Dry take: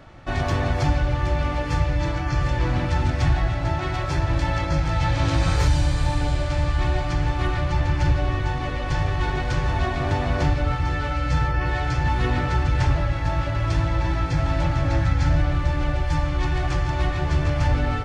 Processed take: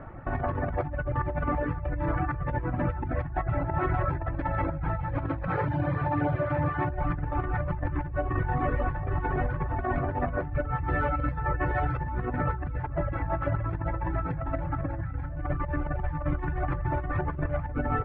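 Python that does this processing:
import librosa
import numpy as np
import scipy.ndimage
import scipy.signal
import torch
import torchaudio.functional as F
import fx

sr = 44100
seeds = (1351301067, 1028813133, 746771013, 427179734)

y = fx.highpass(x, sr, hz=110.0, slope=24, at=(5.48, 6.9))
y = fx.bass_treble(y, sr, bass_db=-1, treble_db=9, at=(10.88, 12.06))
y = scipy.signal.sosfilt(scipy.signal.butter(4, 1700.0, 'lowpass', fs=sr, output='sos'), y)
y = fx.dereverb_blind(y, sr, rt60_s=0.99)
y = fx.over_compress(y, sr, threshold_db=-29.0, ratio=-1.0)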